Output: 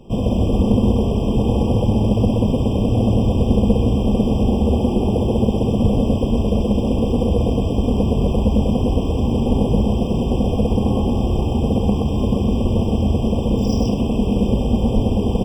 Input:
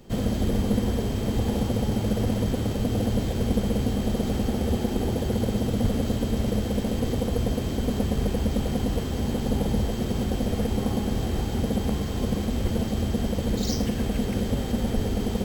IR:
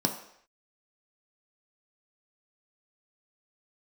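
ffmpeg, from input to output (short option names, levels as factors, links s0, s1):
-af "highshelf=f=4700:g=-12,aecho=1:1:125:0.708,afftfilt=real='re*eq(mod(floor(b*sr/1024/1200),2),0)':imag='im*eq(mod(floor(b*sr/1024/1200),2),0)':win_size=1024:overlap=0.75,volume=2.11"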